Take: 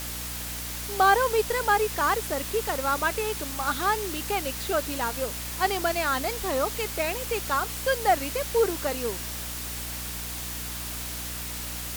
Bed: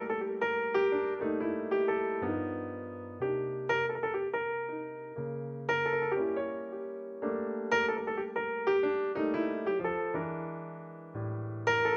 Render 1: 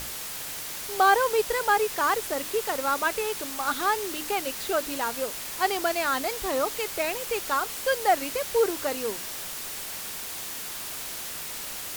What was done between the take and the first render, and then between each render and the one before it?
mains-hum notches 60/120/180/240/300 Hz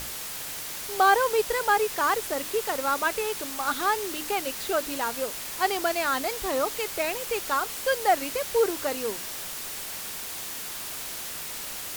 no processing that can be heard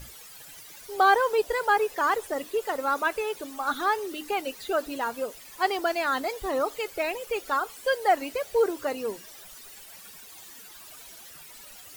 broadband denoise 15 dB, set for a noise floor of −36 dBFS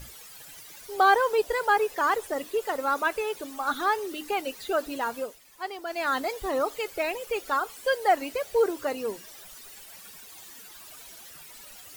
0:05.17–0:06.08: duck −9.5 dB, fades 0.22 s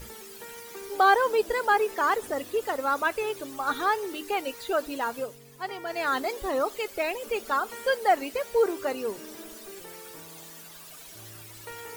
mix in bed −14.5 dB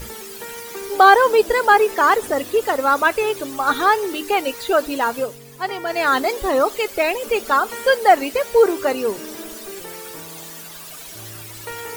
level +9.5 dB
brickwall limiter −1 dBFS, peak gain reduction 1 dB

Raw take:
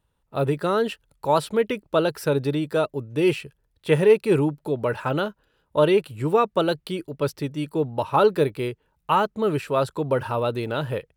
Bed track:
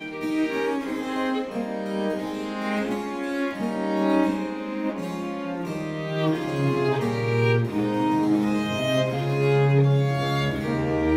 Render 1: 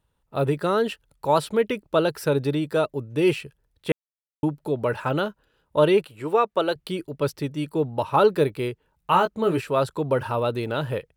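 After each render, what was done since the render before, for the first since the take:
0:03.92–0:04.43: silence
0:06.05–0:06.76: bass and treble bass −13 dB, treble −4 dB
0:09.11–0:09.62: double-tracking delay 17 ms −6 dB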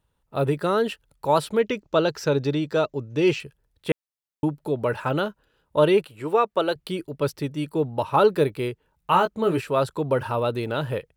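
0:01.59–0:03.40: high shelf with overshoot 7,900 Hz −7.5 dB, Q 3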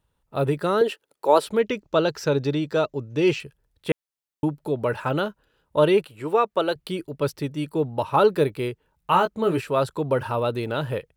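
0:00.81–0:01.47: high-pass with resonance 380 Hz, resonance Q 2.2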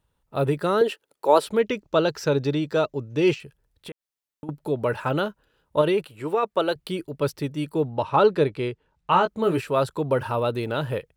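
0:03.34–0:04.49: downward compressor, threshold −36 dBFS
0:05.81–0:06.43: downward compressor, threshold −17 dBFS
0:07.89–0:09.28: low-pass filter 6,200 Hz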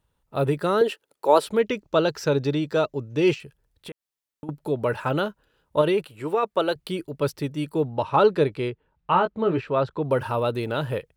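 0:08.70–0:10.05: high-frequency loss of the air 220 metres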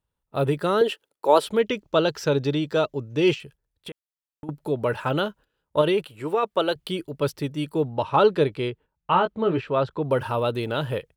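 noise gate −46 dBFS, range −10 dB
dynamic equaliser 3,200 Hz, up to +6 dB, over −50 dBFS, Q 4.6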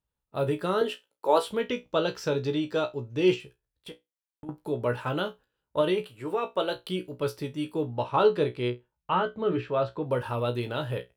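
tuned comb filter 61 Hz, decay 0.18 s, harmonics all, mix 90%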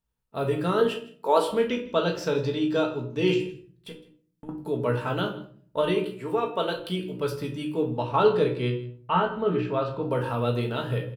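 single-tap delay 160 ms −20 dB
rectangular room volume 510 cubic metres, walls furnished, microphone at 1.6 metres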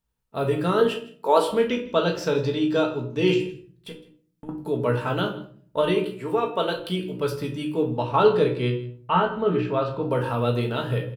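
level +2.5 dB

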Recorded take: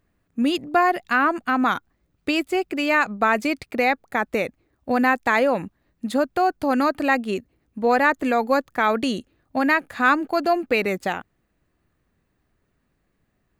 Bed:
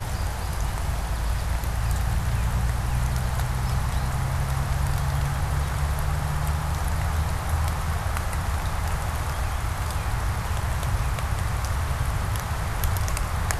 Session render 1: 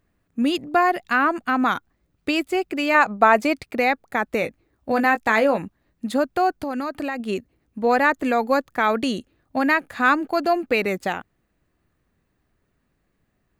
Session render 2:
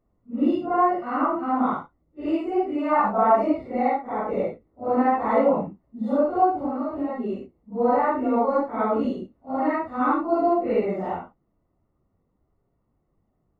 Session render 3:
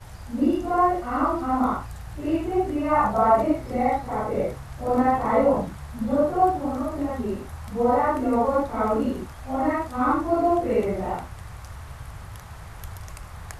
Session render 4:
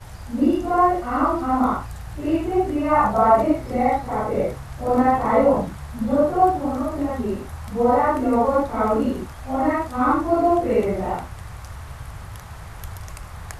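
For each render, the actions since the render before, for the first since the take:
0:02.94–0:03.53: dynamic equaliser 770 Hz, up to +7 dB, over −32 dBFS, Q 0.94; 0:04.40–0:05.58: double-tracking delay 18 ms −8.5 dB; 0:06.61–0:07.20: downward compressor, threshold −23 dBFS
random phases in long frames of 200 ms; Savitzky-Golay smoothing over 65 samples
mix in bed −13 dB
level +3 dB

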